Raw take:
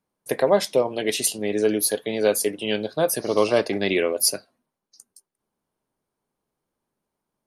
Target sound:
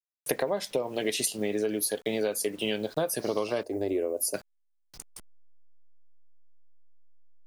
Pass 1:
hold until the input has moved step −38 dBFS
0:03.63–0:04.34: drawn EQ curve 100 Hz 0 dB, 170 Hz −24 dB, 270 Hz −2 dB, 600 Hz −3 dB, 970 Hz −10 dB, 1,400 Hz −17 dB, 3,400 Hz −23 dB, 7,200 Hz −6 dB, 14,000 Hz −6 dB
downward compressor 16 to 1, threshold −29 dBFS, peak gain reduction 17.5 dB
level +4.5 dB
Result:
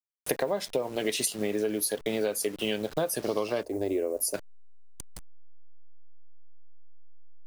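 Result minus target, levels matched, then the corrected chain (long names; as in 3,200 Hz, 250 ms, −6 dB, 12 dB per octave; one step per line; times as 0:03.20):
hold until the input has moved: distortion +10 dB
hold until the input has moved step −46.5 dBFS
0:03.63–0:04.34: drawn EQ curve 100 Hz 0 dB, 170 Hz −24 dB, 270 Hz −2 dB, 600 Hz −3 dB, 970 Hz −10 dB, 1,400 Hz −17 dB, 3,400 Hz −23 dB, 7,200 Hz −6 dB, 14,000 Hz −6 dB
downward compressor 16 to 1, threshold −29 dBFS, peak gain reduction 17.5 dB
level +4.5 dB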